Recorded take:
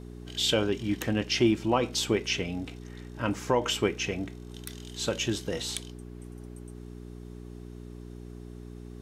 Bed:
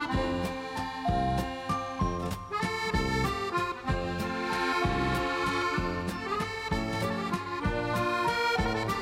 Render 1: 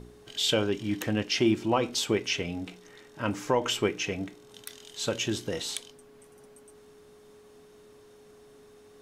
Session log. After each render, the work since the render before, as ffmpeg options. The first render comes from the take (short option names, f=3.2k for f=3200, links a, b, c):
-af "bandreject=f=60:t=h:w=4,bandreject=f=120:t=h:w=4,bandreject=f=180:t=h:w=4,bandreject=f=240:t=h:w=4,bandreject=f=300:t=h:w=4,bandreject=f=360:t=h:w=4"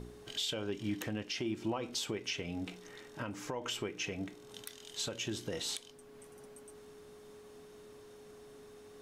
-af "acompressor=threshold=-29dB:ratio=2.5,alimiter=level_in=2dB:limit=-24dB:level=0:latency=1:release=418,volume=-2dB"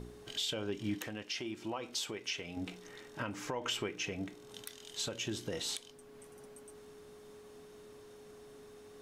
-filter_complex "[0:a]asettb=1/sr,asplit=3[a][b][c];[a]atrim=end=0.984[d];[b]atrim=start=0.98:end=2.57,asetpts=PTS-STARTPTS,afade=t=in:d=0.004:c=qsin,afade=t=out:st=1.586:d=0.004:c=qsin,lowshelf=f=390:g=-8.5[e];[c]atrim=start=2.566[f];[d][e]acrossfade=d=0.004:c1=hsin:c2=qsin[g];[g][f]acrossfade=d=0.004:c1=qsin:c2=hsin,asettb=1/sr,asplit=3[h][i][j];[h]atrim=end=3.174[k];[i]atrim=start=3.17:end=3.96,asetpts=PTS-STARTPTS,afade=t=in:d=0.004:c=qsin,afade=t=out:st=0.786:d=0.004:c=qsin,equalizer=f=2k:w=0.49:g=3.5[l];[j]atrim=start=3.956[m];[k][l]acrossfade=d=0.004:c1=hsin:c2=qsin[n];[n][m]acrossfade=d=0.004:c1=qsin:c2=hsin"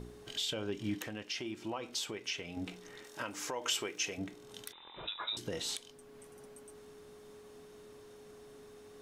-filter_complex "[0:a]asettb=1/sr,asplit=3[a][b][c];[a]atrim=end=3.044[d];[b]atrim=start=3.04:end=4.18,asetpts=PTS-STARTPTS,afade=t=in:d=0.004:c=qsin,afade=t=out:st=1.136:d=0.004:c=qsin,bass=f=250:g=-11,treble=f=4k:g=8[e];[c]atrim=start=4.176[f];[d][e]acrossfade=d=0.004:c1=hsin:c2=qsin[g];[g][f]acrossfade=d=0.004:c1=qsin:c2=hsin,asettb=1/sr,asplit=3[h][i][j];[h]atrim=end=4.724[k];[i]atrim=start=4.72:end=5.37,asetpts=PTS-STARTPTS,afade=t=in:d=0.004:c=qsin,afade=t=out:st=0.646:d=0.004:c=qsin,lowpass=f=3.4k:t=q:w=0.5098,lowpass=f=3.4k:t=q:w=0.6013,lowpass=f=3.4k:t=q:w=0.9,lowpass=f=3.4k:t=q:w=2.563,afreqshift=-4000[l];[j]atrim=start=5.366[m];[k][l]acrossfade=d=0.004:c1=hsin:c2=qsin[n];[n][m]acrossfade=d=0.004:c1=qsin:c2=hsin"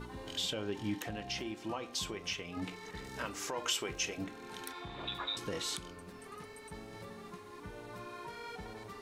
-filter_complex "[1:a]volume=-18.5dB[a];[0:a][a]amix=inputs=2:normalize=0"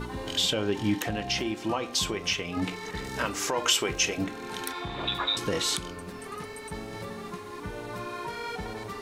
-af "volume=10dB"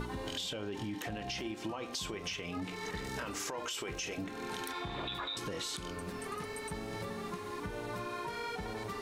-af "alimiter=limit=-22dB:level=0:latency=1:release=21,acompressor=threshold=-36dB:ratio=6"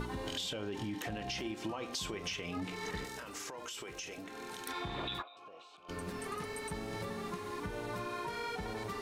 -filter_complex "[0:a]asettb=1/sr,asplit=3[a][b][c];[a]atrim=end=3.044[d];[b]atrim=start=3.04:end=4.67,asetpts=PTS-STARTPTS,afade=t=in:d=0.004:c=qsin,afade=t=out:st=1.626:d=0.004:c=qsin,acrossover=split=310|5700[e][f][g];[e]acompressor=threshold=-56dB:ratio=4[h];[f]acompressor=threshold=-44dB:ratio=4[i];[g]acompressor=threshold=-48dB:ratio=4[j];[h][i][j]amix=inputs=3:normalize=0[k];[c]atrim=start=4.666[l];[d][k]acrossfade=d=0.004:c1=hsin:c2=qsin[m];[m][l]acrossfade=d=0.004:c1=qsin:c2=hsin,asplit=3[n][o][p];[n]afade=t=out:st=5.21:d=0.02[q];[o]asplit=3[r][s][t];[r]bandpass=f=730:t=q:w=8,volume=0dB[u];[s]bandpass=f=1.09k:t=q:w=8,volume=-6dB[v];[t]bandpass=f=2.44k:t=q:w=8,volume=-9dB[w];[u][v][w]amix=inputs=3:normalize=0,afade=t=in:st=5.21:d=0.02,afade=t=out:st=5.88:d=0.02[x];[p]afade=t=in:st=5.88:d=0.02[y];[q][x][y]amix=inputs=3:normalize=0"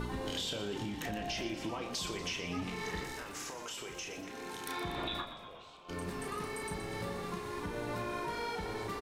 -filter_complex "[0:a]asplit=2[a][b];[b]adelay=34,volume=-7dB[c];[a][c]amix=inputs=2:normalize=0,asplit=2[d][e];[e]asplit=7[f][g][h][i][j][k][l];[f]adelay=120,afreqshift=-50,volume=-11dB[m];[g]adelay=240,afreqshift=-100,volume=-15.4dB[n];[h]adelay=360,afreqshift=-150,volume=-19.9dB[o];[i]adelay=480,afreqshift=-200,volume=-24.3dB[p];[j]adelay=600,afreqshift=-250,volume=-28.7dB[q];[k]adelay=720,afreqshift=-300,volume=-33.2dB[r];[l]adelay=840,afreqshift=-350,volume=-37.6dB[s];[m][n][o][p][q][r][s]amix=inputs=7:normalize=0[t];[d][t]amix=inputs=2:normalize=0"